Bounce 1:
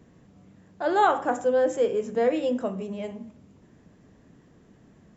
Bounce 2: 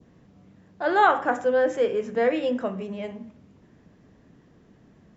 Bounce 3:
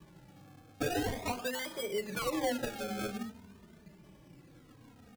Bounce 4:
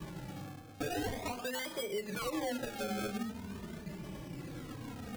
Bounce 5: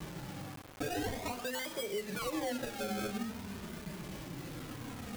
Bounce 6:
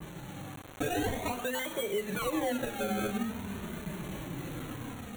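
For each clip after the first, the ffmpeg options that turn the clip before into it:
-af "lowpass=f=6300:w=0.5412,lowpass=f=6300:w=1.3066,adynamicequalizer=threshold=0.00631:dfrequency=1800:dqfactor=1.1:tfrequency=1800:tqfactor=1.1:attack=5:release=100:ratio=0.375:range=3.5:mode=boostabove:tftype=bell"
-filter_complex "[0:a]acompressor=threshold=0.0398:ratio=12,acrusher=samples=31:mix=1:aa=0.000001:lfo=1:lforange=31:lforate=0.42,asplit=2[s0][s1];[s1]adelay=3,afreqshift=-0.49[s2];[s0][s2]amix=inputs=2:normalize=1,volume=1.19"
-af "areverse,acompressor=mode=upward:threshold=0.01:ratio=2.5,areverse,alimiter=level_in=2.51:limit=0.0631:level=0:latency=1:release=309,volume=0.398,volume=1.78"
-af "acrusher=bits=7:mix=0:aa=0.000001"
-af "asuperstop=centerf=5000:order=8:qfactor=3.4,dynaudnorm=f=220:g=5:m=1.78,adynamicequalizer=threshold=0.00224:dfrequency=5500:dqfactor=0.75:tfrequency=5500:tqfactor=0.75:attack=5:release=100:ratio=0.375:range=2:mode=cutabove:tftype=bell"

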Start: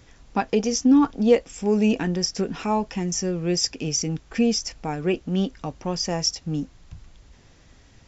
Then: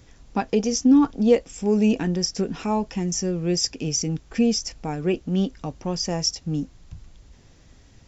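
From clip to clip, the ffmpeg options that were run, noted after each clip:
-af "equalizer=f=1600:w=0.38:g=-4.5,volume=1.19"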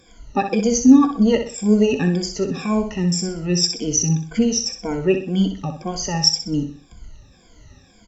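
-filter_complex "[0:a]afftfilt=real='re*pow(10,23/40*sin(2*PI*(1.8*log(max(b,1)*sr/1024/100)/log(2)-(-1.9)*(pts-256)/sr)))':imag='im*pow(10,23/40*sin(2*PI*(1.8*log(max(b,1)*sr/1024/100)/log(2)-(-1.9)*(pts-256)/sr)))':win_size=1024:overlap=0.75,asplit=2[s0][s1];[s1]aecho=0:1:63|126|189|252:0.398|0.143|0.0516|0.0186[s2];[s0][s2]amix=inputs=2:normalize=0,volume=0.841"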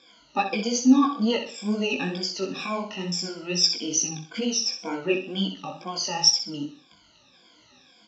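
-af "flanger=delay=15.5:depth=6.4:speed=2.2,crystalizer=i=3.5:c=0,highpass=340,equalizer=f=430:t=q:w=4:g=-9,equalizer=f=700:t=q:w=4:g=-4,equalizer=f=1900:t=q:w=4:g=-9,lowpass=f=4200:w=0.5412,lowpass=f=4200:w=1.3066,volume=1.19"

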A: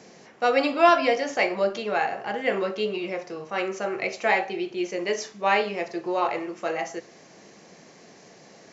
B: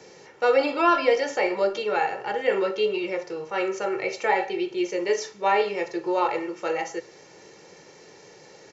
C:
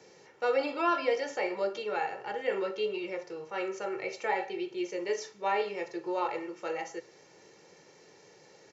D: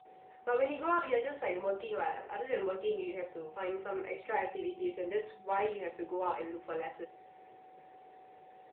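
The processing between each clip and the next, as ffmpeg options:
-filter_complex "[0:a]aecho=1:1:2.2:0.64,acrossover=split=100|1400[s0][s1][s2];[s2]alimiter=limit=0.0631:level=0:latency=1:release=17[s3];[s0][s1][s3]amix=inputs=3:normalize=0"
-af "highpass=56,volume=0.398"
-filter_complex "[0:a]acrossover=split=170|3100[s0][s1][s2];[s1]adelay=50[s3];[s2]adelay=80[s4];[s0][s3][s4]amix=inputs=3:normalize=0,aeval=exprs='val(0)+0.00251*sin(2*PI*750*n/s)':c=same,volume=0.75" -ar 8000 -c:a libopencore_amrnb -b:a 7950

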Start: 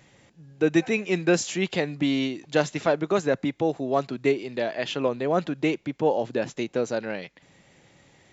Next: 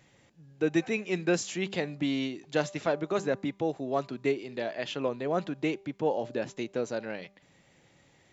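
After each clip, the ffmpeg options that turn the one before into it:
-af "bandreject=f=197:t=h:w=4,bandreject=f=394:t=h:w=4,bandreject=f=591:t=h:w=4,bandreject=f=788:t=h:w=4,bandreject=f=985:t=h:w=4,bandreject=f=1182:t=h:w=4,volume=0.531"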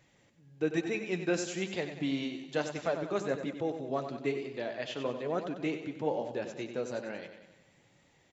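-af "aecho=1:1:94|188|282|376|470|564:0.355|0.192|0.103|0.0559|0.0302|0.0163,flanger=delay=1.7:depth=8.4:regen=-55:speed=1.1:shape=triangular"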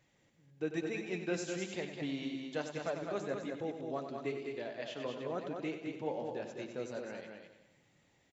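-af "aecho=1:1:207:0.531,volume=0.501"

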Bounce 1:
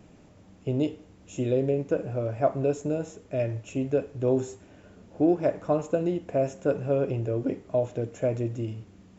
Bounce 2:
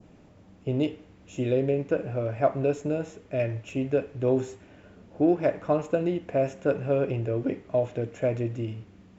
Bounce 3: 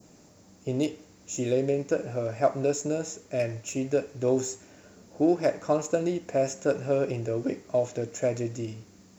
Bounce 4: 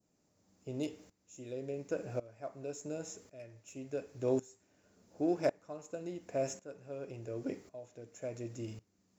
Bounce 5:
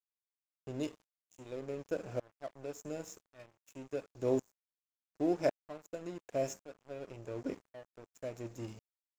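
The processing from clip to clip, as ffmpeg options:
-af "adynamicequalizer=threshold=0.00398:dfrequency=2200:dqfactor=0.92:tfrequency=2200:tqfactor=0.92:attack=5:release=100:ratio=0.375:range=3:mode=boostabove:tftype=bell,adynamicsmooth=sensitivity=5:basefreq=6800"
-af "lowshelf=f=99:g=-10,aexciter=amount=5:drive=7.5:freq=4500"
-af "aeval=exprs='val(0)*pow(10,-19*if(lt(mod(-0.91*n/s,1),2*abs(-0.91)/1000),1-mod(-0.91*n/s,1)/(2*abs(-0.91)/1000),(mod(-0.91*n/s,1)-2*abs(-0.91)/1000)/(1-2*abs(-0.91)/1000))/20)':c=same,volume=0.531"
-af "aeval=exprs='sgn(val(0))*max(abs(val(0))-0.00282,0)':c=same,volume=1.12"

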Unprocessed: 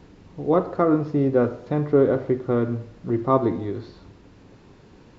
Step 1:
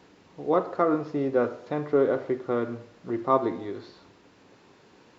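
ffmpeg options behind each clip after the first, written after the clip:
-af "highpass=f=540:p=1"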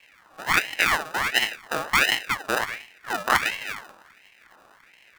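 -af "acrusher=samples=40:mix=1:aa=0.000001,aeval=exprs='val(0)*sin(2*PI*1700*n/s+1700*0.45/1.4*sin(2*PI*1.4*n/s))':c=same,volume=1.58"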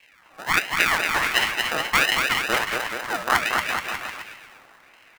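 -af "aecho=1:1:230|425.5|591.7|732.9|853:0.631|0.398|0.251|0.158|0.1"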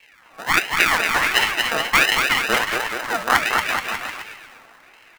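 -af "flanger=delay=2.2:depth=2.3:regen=68:speed=1.4:shape=sinusoidal,volume=2.37"

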